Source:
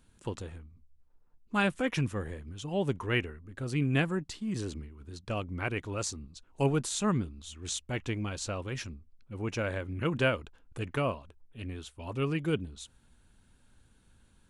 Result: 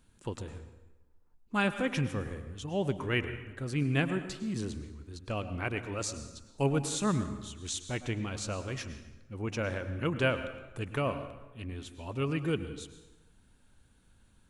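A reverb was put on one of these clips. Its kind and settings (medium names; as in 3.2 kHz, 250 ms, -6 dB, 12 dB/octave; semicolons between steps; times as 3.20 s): plate-style reverb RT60 1.1 s, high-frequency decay 0.75×, pre-delay 90 ms, DRR 10 dB; trim -1 dB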